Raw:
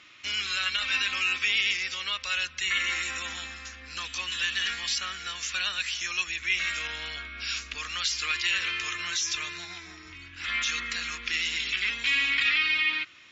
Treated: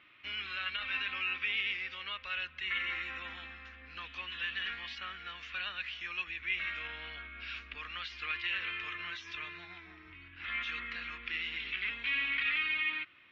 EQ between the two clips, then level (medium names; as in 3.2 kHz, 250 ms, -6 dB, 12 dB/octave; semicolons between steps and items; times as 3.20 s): low-pass 3 kHz 24 dB/octave; -6.5 dB